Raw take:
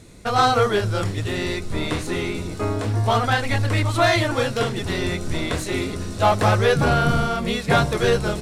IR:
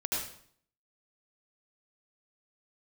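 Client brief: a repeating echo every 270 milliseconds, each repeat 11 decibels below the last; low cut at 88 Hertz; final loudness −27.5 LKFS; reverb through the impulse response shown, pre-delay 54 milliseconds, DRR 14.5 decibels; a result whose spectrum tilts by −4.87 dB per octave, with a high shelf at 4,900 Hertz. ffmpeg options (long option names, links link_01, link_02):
-filter_complex "[0:a]highpass=88,highshelf=frequency=4900:gain=3.5,aecho=1:1:270|540|810:0.282|0.0789|0.0221,asplit=2[link_01][link_02];[1:a]atrim=start_sample=2205,adelay=54[link_03];[link_02][link_03]afir=irnorm=-1:irlink=0,volume=-20.5dB[link_04];[link_01][link_04]amix=inputs=2:normalize=0,volume=-6.5dB"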